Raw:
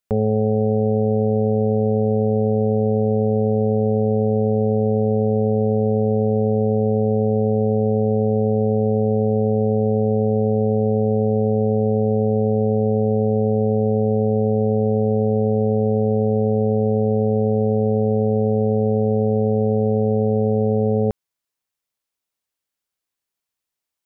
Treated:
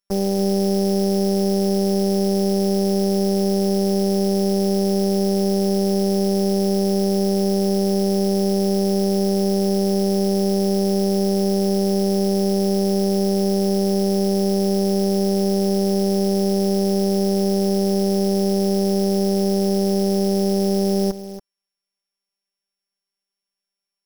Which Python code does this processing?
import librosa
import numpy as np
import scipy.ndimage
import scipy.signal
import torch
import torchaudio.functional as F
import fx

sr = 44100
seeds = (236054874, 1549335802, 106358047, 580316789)

p1 = np.r_[np.sort(x[:len(x) // 8 * 8].reshape(-1, 8), axis=1).ravel(), x[len(x) // 8 * 8:]]
p2 = fx.robotise(p1, sr, hz=196.0)
p3 = fx.quant_float(p2, sr, bits=2)
y = p3 + fx.echo_single(p3, sr, ms=281, db=-12.5, dry=0)